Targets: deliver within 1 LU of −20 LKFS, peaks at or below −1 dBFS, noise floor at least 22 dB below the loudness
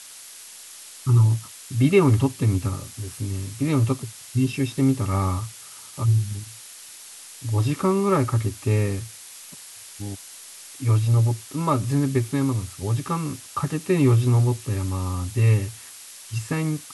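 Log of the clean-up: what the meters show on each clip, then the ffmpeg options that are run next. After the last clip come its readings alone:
background noise floor −43 dBFS; target noise floor −45 dBFS; integrated loudness −23.0 LKFS; sample peak −6.5 dBFS; target loudness −20.0 LKFS
→ -af "afftdn=noise_reduction=6:noise_floor=-43"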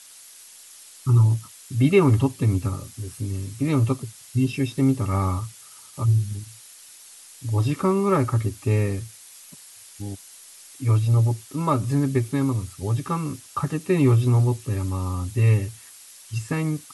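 background noise floor −47 dBFS; integrated loudness −23.0 LKFS; sample peak −6.5 dBFS; target loudness −20.0 LKFS
→ -af "volume=3dB"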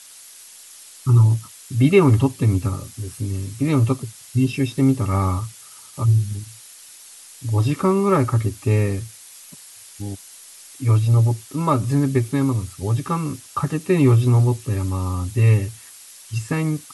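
integrated loudness −20.0 LKFS; sample peak −3.5 dBFS; background noise floor −44 dBFS

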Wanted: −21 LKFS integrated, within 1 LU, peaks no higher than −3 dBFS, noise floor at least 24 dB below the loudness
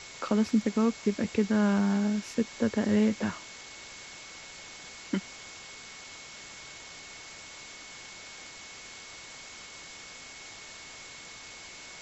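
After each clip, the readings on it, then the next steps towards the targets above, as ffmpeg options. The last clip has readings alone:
interfering tone 2,200 Hz; level of the tone −50 dBFS; background noise floor −47 dBFS; target noise floor −52 dBFS; integrated loudness −28.0 LKFS; sample peak −13.5 dBFS; target loudness −21.0 LKFS
→ -af "bandreject=frequency=2200:width=30"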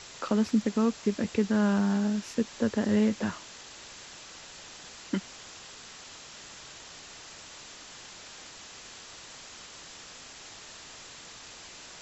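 interfering tone none found; background noise floor −48 dBFS; target noise floor −53 dBFS
→ -af "afftdn=noise_reduction=6:noise_floor=-48"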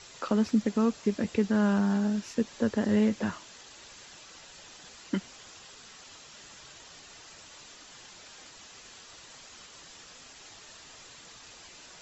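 background noise floor −51 dBFS; target noise floor −52 dBFS
→ -af "afftdn=noise_reduction=6:noise_floor=-51"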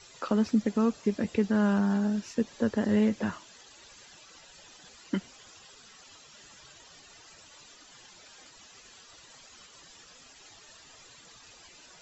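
background noise floor −54 dBFS; integrated loudness −28.0 LKFS; sample peak −14.0 dBFS; target loudness −21.0 LKFS
→ -af "volume=7dB"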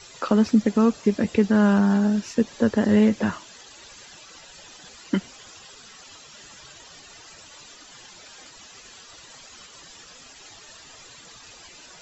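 integrated loudness −21.0 LKFS; sample peak −7.0 dBFS; background noise floor −47 dBFS

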